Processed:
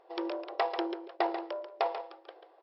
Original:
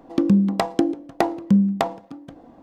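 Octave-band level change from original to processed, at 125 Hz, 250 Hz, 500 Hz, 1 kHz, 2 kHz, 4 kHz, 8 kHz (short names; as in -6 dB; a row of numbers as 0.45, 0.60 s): under -40 dB, -21.0 dB, -7.0 dB, -6.0 dB, -6.0 dB, -6.0 dB, n/a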